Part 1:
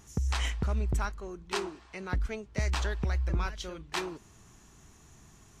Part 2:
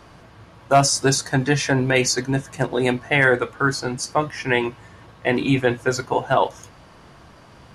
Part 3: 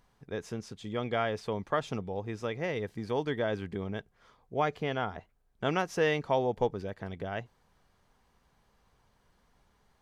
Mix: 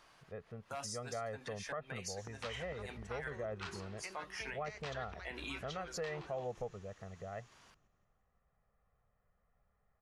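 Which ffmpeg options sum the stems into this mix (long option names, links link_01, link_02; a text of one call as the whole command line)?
ffmpeg -i stem1.wav -i stem2.wav -i stem3.wav -filter_complex "[0:a]lowpass=4200,acompressor=threshold=-34dB:ratio=6,adelay=2100,volume=0dB,asplit=2[link_01][link_02];[link_02]volume=-21dB[link_03];[1:a]volume=-10.5dB[link_04];[2:a]lowpass=frequency=2200:width=0.5412,lowpass=frequency=2200:width=1.3066,aecho=1:1:1.6:0.76,volume=-12dB,asplit=2[link_05][link_06];[link_06]apad=whole_len=341445[link_07];[link_04][link_07]sidechaincompress=threshold=-57dB:ratio=8:attack=6.8:release=117[link_08];[link_01][link_08]amix=inputs=2:normalize=0,highpass=frequency=1500:poles=1,alimiter=level_in=7.5dB:limit=-24dB:level=0:latency=1:release=163,volume=-7.5dB,volume=0dB[link_09];[link_03]aecho=0:1:171|342|513|684|855|1026|1197|1368:1|0.56|0.314|0.176|0.0983|0.0551|0.0308|0.0173[link_10];[link_05][link_09][link_10]amix=inputs=3:normalize=0,alimiter=level_in=7dB:limit=-24dB:level=0:latency=1:release=102,volume=-7dB" out.wav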